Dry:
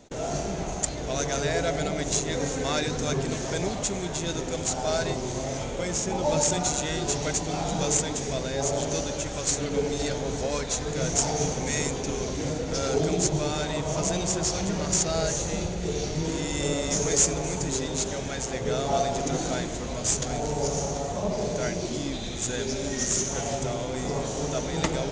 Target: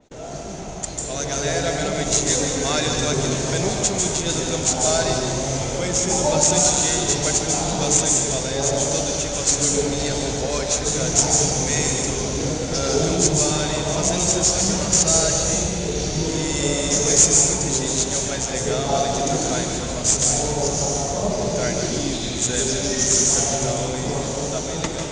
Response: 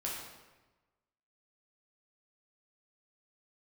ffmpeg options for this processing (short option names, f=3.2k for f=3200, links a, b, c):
-filter_complex "[0:a]dynaudnorm=f=520:g=5:m=9dB,asplit=2[a][b];[1:a]atrim=start_sample=2205,highshelf=f=5.1k:g=10.5,adelay=146[c];[b][c]afir=irnorm=-1:irlink=0,volume=-7.5dB[d];[a][d]amix=inputs=2:normalize=0,adynamicequalizer=threshold=0.0282:dfrequency=4000:dqfactor=0.7:tfrequency=4000:tqfactor=0.7:attack=5:release=100:ratio=0.375:range=2:mode=boostabove:tftype=highshelf,volume=-3.5dB"